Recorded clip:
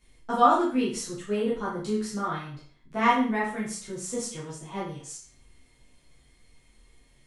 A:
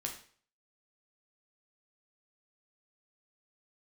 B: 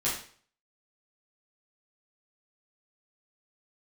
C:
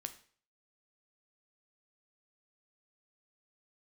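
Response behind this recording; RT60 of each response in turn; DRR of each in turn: B; 0.50, 0.50, 0.50 s; 1.0, -8.5, 8.0 dB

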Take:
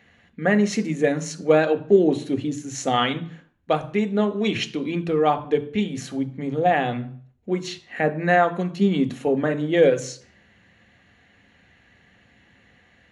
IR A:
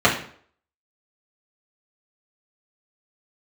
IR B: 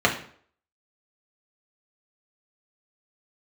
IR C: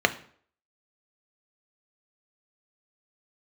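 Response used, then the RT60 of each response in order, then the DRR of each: C; 0.55, 0.55, 0.55 s; -7.0, -1.5, 8.0 dB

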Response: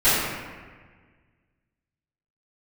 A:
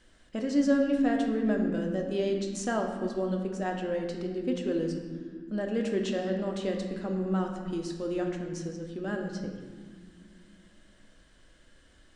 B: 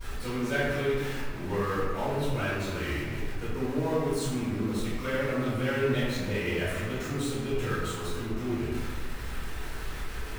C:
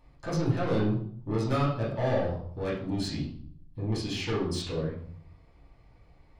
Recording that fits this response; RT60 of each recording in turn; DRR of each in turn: B; not exponential, 1.5 s, 0.60 s; 1.5, -19.0, -8.0 dB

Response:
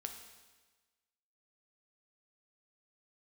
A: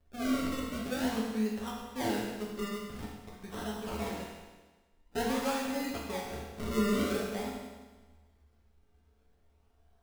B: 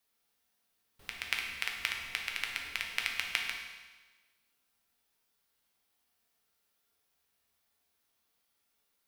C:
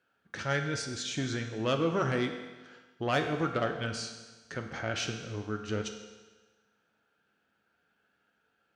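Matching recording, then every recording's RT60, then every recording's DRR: C; 1.3, 1.3, 1.3 s; -4.5, 0.0, 4.0 dB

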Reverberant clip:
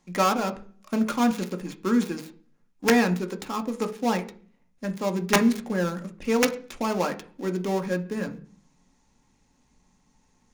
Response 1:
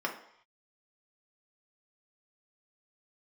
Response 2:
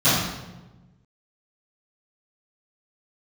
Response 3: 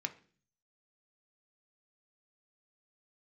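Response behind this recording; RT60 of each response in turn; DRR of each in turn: 3; 0.70, 1.1, 0.45 s; -0.5, -19.0, 5.5 dB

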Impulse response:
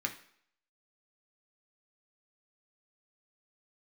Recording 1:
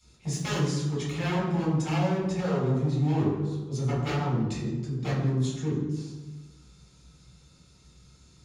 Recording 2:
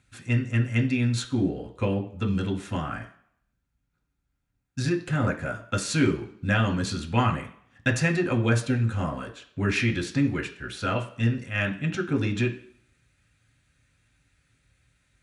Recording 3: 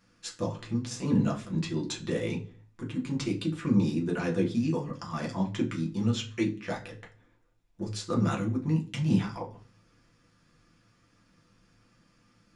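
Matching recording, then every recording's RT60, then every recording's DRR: 2; 1.2 s, not exponential, 0.40 s; -7.0, 1.5, -2.0 dB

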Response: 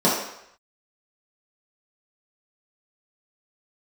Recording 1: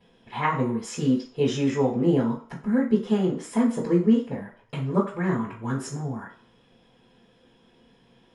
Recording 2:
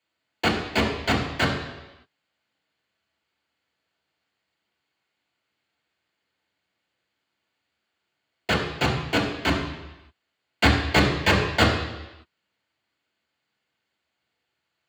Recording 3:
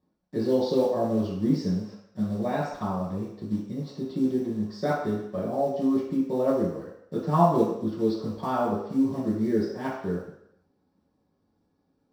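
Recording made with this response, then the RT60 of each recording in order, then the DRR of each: 3; 0.50, 1.0, 0.75 s; -12.5, -3.5, -8.0 dB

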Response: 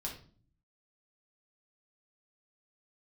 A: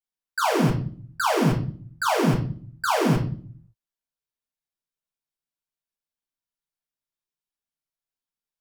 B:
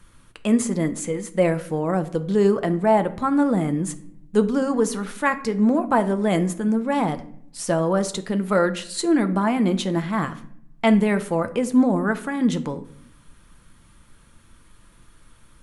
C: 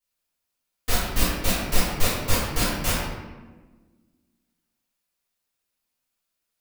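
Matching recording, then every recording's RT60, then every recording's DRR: A; 0.45, 0.65, 1.3 s; -3.0, 9.0, -12.5 dB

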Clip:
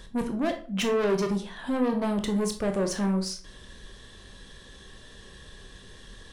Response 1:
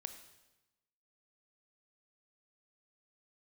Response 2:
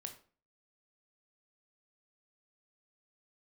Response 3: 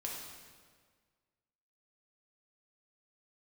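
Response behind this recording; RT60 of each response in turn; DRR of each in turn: 2; 1.0, 0.40, 1.7 s; 8.0, 5.0, -3.0 dB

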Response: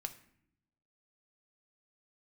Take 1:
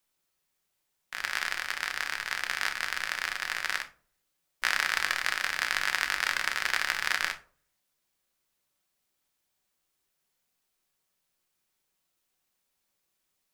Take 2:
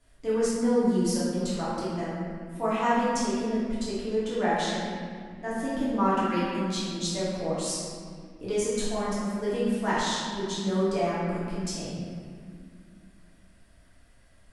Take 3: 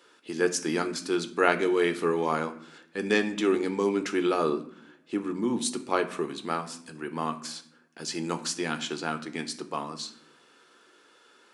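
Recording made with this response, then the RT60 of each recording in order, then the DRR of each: 3; 0.45 s, 2.1 s, not exponential; 5.5, -10.0, 7.5 dB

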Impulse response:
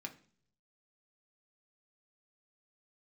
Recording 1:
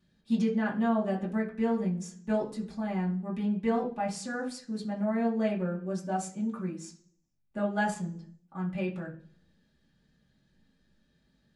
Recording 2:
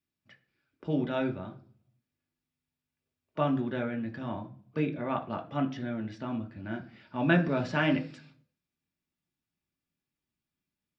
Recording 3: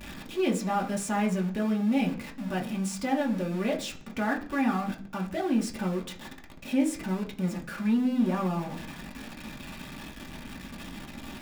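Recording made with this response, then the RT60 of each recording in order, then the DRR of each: 2; 0.50, 0.50, 0.50 s; -7.5, 2.5, -1.5 dB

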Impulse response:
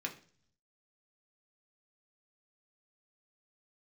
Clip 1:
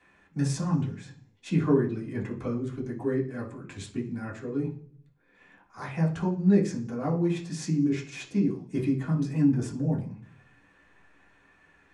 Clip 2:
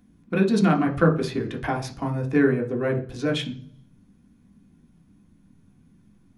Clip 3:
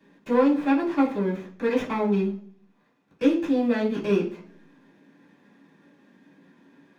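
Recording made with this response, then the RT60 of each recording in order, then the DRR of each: 2; 0.45, 0.45, 0.45 s; -5.0, 0.5, -13.0 dB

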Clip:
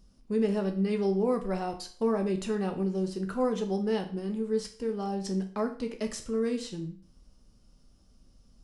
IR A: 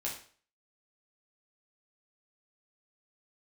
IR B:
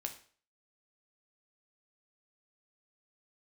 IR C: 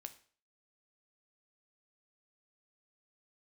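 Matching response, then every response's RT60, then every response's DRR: B; 0.45, 0.45, 0.45 s; -4.5, 4.0, 8.0 dB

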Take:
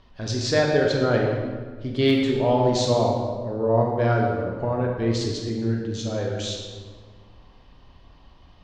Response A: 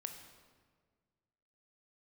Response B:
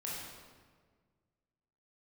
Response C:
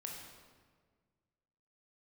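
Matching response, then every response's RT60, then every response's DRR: C; 1.6, 1.6, 1.6 s; 5.0, -6.0, -1.0 dB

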